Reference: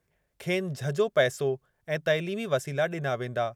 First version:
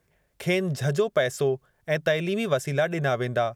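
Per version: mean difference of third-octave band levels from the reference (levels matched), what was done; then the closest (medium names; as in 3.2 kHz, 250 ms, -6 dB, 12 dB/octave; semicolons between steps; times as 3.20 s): 2.0 dB: compression 5:1, threshold -25 dBFS, peak gain reduction 8 dB; trim +6 dB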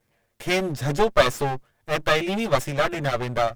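5.5 dB: comb filter that takes the minimum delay 8.7 ms; trim +7.5 dB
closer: first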